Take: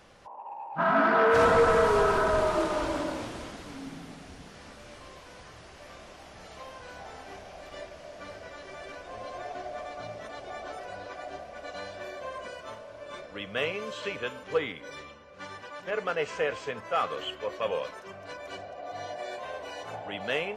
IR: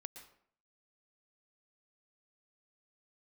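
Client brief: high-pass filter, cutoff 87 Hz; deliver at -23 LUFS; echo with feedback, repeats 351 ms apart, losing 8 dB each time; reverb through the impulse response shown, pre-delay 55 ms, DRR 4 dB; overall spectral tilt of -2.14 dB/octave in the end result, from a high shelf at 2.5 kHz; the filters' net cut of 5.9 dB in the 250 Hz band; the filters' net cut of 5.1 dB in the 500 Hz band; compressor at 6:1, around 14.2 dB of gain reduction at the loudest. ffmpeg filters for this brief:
-filter_complex "[0:a]highpass=87,equalizer=f=250:t=o:g=-6,equalizer=f=500:t=o:g=-5.5,highshelf=f=2500:g=7.5,acompressor=threshold=0.0158:ratio=6,aecho=1:1:351|702|1053|1404|1755:0.398|0.159|0.0637|0.0255|0.0102,asplit=2[s0][s1];[1:a]atrim=start_sample=2205,adelay=55[s2];[s1][s2]afir=irnorm=-1:irlink=0,volume=1.12[s3];[s0][s3]amix=inputs=2:normalize=0,volume=5.96"

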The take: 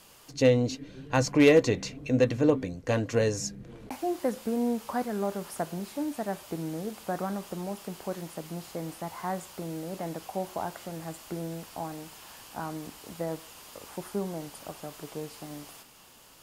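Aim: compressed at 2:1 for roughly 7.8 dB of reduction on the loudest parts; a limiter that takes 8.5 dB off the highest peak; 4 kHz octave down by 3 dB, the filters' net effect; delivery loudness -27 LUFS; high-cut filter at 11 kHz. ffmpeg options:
-af "lowpass=11000,equalizer=f=4000:t=o:g=-4,acompressor=threshold=0.0316:ratio=2,volume=2.99,alimiter=limit=0.2:level=0:latency=1"

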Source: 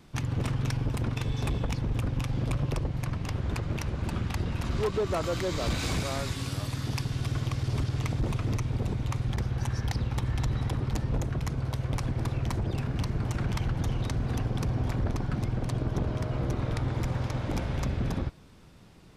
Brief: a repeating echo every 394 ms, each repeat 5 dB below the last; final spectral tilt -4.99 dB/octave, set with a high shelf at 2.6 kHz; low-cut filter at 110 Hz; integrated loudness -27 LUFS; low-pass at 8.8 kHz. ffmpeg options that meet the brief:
-af "highpass=110,lowpass=8800,highshelf=f=2600:g=7.5,aecho=1:1:394|788|1182|1576|1970|2364|2758:0.562|0.315|0.176|0.0988|0.0553|0.031|0.0173,volume=1.5"

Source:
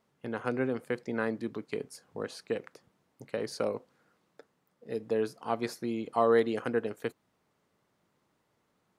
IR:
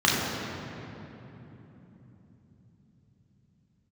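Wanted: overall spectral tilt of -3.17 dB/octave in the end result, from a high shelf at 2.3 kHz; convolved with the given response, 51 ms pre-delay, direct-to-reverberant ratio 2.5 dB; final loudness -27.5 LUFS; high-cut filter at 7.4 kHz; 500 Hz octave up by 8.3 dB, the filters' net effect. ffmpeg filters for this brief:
-filter_complex "[0:a]lowpass=7400,equalizer=f=500:t=o:g=9,highshelf=f=2300:g=7,asplit=2[s0][s1];[1:a]atrim=start_sample=2205,adelay=51[s2];[s1][s2]afir=irnorm=-1:irlink=0,volume=0.0891[s3];[s0][s3]amix=inputs=2:normalize=0,volume=0.75"

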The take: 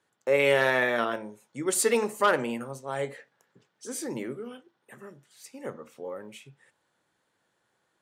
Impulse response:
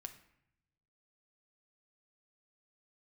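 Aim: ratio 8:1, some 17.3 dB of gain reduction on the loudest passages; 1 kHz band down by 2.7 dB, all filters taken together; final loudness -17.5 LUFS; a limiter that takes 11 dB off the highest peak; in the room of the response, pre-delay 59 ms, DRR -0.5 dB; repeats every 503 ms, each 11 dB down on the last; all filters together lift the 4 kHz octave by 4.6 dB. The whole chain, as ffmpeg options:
-filter_complex "[0:a]equalizer=f=1000:t=o:g=-4,equalizer=f=4000:t=o:g=6.5,acompressor=threshold=0.0141:ratio=8,alimiter=level_in=3.76:limit=0.0631:level=0:latency=1,volume=0.266,aecho=1:1:503|1006|1509:0.282|0.0789|0.0221,asplit=2[s0][s1];[1:a]atrim=start_sample=2205,adelay=59[s2];[s1][s2]afir=irnorm=-1:irlink=0,volume=1.78[s3];[s0][s3]amix=inputs=2:normalize=0,volume=18.8"

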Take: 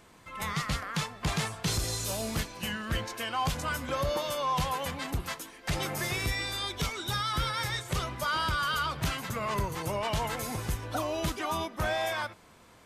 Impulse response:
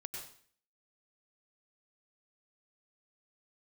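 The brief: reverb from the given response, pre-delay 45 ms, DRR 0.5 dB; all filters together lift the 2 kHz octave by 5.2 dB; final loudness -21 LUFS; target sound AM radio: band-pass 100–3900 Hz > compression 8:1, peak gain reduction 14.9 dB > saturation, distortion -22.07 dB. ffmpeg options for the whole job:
-filter_complex "[0:a]equalizer=f=2000:t=o:g=7,asplit=2[s0][s1];[1:a]atrim=start_sample=2205,adelay=45[s2];[s1][s2]afir=irnorm=-1:irlink=0,volume=1.19[s3];[s0][s3]amix=inputs=2:normalize=0,highpass=100,lowpass=3900,acompressor=threshold=0.0158:ratio=8,asoftclip=threshold=0.0316,volume=8.41"

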